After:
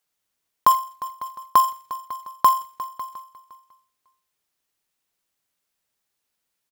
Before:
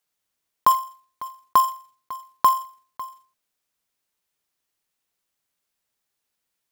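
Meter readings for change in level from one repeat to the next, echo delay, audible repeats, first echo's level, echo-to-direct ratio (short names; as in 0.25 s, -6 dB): -8.5 dB, 0.354 s, 3, -16.0 dB, -15.5 dB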